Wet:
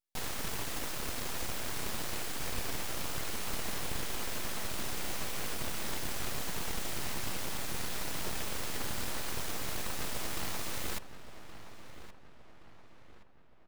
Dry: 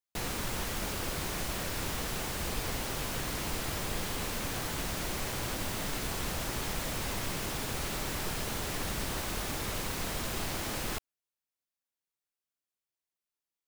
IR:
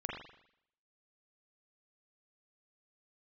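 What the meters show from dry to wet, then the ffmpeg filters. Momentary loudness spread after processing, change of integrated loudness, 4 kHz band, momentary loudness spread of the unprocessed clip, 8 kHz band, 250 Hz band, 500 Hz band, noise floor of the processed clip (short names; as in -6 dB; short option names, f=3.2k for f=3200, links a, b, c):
3 LU, -2.5 dB, -2.5 dB, 0 LU, -2.0 dB, -5.0 dB, -4.5 dB, -50 dBFS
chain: -filter_complex "[0:a]aeval=exprs='abs(val(0))':c=same,asplit=2[a][b];[b]adelay=1122,lowpass=f=2.9k:p=1,volume=-12dB,asplit=2[c][d];[d]adelay=1122,lowpass=f=2.9k:p=1,volume=0.48,asplit=2[e][f];[f]adelay=1122,lowpass=f=2.9k:p=1,volume=0.48,asplit=2[g][h];[h]adelay=1122,lowpass=f=2.9k:p=1,volume=0.48,asplit=2[i][j];[j]adelay=1122,lowpass=f=2.9k:p=1,volume=0.48[k];[c][e][g][i][k]amix=inputs=5:normalize=0[l];[a][l]amix=inputs=2:normalize=0"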